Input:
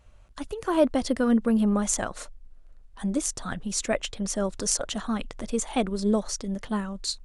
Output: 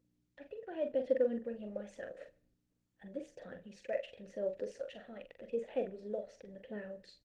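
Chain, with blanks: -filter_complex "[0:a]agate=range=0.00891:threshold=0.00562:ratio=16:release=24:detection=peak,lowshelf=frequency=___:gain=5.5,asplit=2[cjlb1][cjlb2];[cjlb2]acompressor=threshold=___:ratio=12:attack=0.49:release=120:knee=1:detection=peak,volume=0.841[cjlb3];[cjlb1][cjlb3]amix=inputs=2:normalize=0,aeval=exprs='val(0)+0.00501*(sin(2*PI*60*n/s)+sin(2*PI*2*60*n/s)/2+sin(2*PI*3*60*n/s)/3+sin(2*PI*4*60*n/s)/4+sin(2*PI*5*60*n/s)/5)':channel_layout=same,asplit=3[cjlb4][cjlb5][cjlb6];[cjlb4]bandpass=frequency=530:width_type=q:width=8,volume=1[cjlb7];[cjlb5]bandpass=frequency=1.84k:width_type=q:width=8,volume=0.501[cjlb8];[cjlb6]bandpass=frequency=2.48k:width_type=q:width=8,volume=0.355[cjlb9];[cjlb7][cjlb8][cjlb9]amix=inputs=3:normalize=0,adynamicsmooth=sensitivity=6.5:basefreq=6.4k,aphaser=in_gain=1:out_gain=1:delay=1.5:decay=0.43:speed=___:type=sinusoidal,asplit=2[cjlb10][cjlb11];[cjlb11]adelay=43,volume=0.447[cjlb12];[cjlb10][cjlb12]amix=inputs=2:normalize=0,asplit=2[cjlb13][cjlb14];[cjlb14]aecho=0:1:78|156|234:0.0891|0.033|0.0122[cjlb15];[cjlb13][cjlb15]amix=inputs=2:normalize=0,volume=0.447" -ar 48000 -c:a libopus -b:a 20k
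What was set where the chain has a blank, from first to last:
480, 0.0447, 0.88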